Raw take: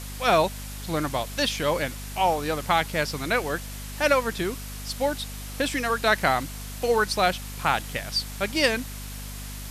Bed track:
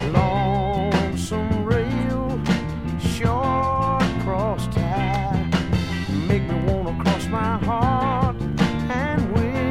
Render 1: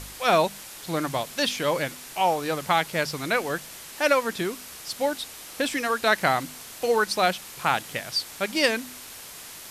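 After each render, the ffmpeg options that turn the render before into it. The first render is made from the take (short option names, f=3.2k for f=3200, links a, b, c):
-af "bandreject=f=50:t=h:w=4,bandreject=f=100:t=h:w=4,bandreject=f=150:t=h:w=4,bandreject=f=200:t=h:w=4,bandreject=f=250:t=h:w=4"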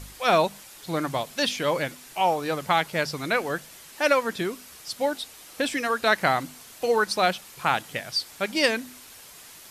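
-af "afftdn=nr=6:nf=-42"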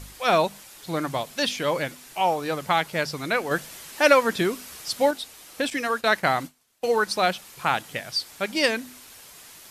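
-filter_complex "[0:a]asettb=1/sr,asplit=3[a][b][c];[a]atrim=end=3.514[d];[b]atrim=start=3.51:end=5.11,asetpts=PTS-STARTPTS,afade=t=in:d=0.004:c=qsin,afade=t=out:st=1.596:d=0.004:c=qsin,acontrast=20[e];[c]atrim=start=5.106[f];[d][e]acrossfade=d=0.004:c1=hsin:c2=qsin[g];[g][f]acrossfade=d=0.004:c1=qsin:c2=hsin,asettb=1/sr,asplit=3[h][i][j];[h]atrim=end=5.704[k];[i]atrim=start=5.7:end=7.03,asetpts=PTS-STARTPTS,afade=t=in:d=0.004:c=qsin,afade=t=out:st=1.326:d=0.004:c=qsin,agate=range=-33dB:threshold=-34dB:ratio=3:release=100:detection=peak[l];[j]atrim=start=7.026[m];[k][l]acrossfade=d=0.004:c1=hsin:c2=qsin[n];[n][m]acrossfade=d=0.004:c1=qsin:c2=hsin"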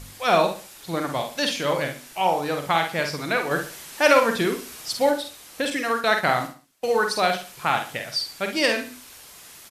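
-filter_complex "[0:a]asplit=2[a][b];[b]adelay=48,volume=-6dB[c];[a][c]amix=inputs=2:normalize=0,asplit=2[d][e];[e]aecho=0:1:69|138|207:0.251|0.0779|0.0241[f];[d][f]amix=inputs=2:normalize=0"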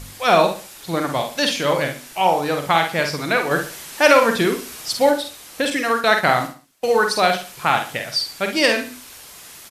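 -af "volume=4.5dB,alimiter=limit=-2dB:level=0:latency=1"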